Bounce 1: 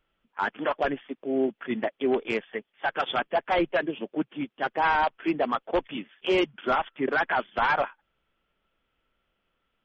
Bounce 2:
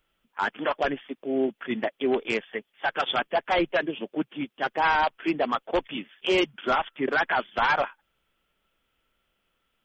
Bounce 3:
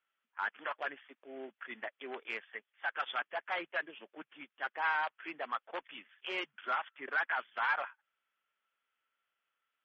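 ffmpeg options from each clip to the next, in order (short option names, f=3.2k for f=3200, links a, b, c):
-af "highshelf=f=4.2k:g=11"
-af "bandpass=f=1.6k:t=q:w=1.3:csg=0,volume=-6.5dB"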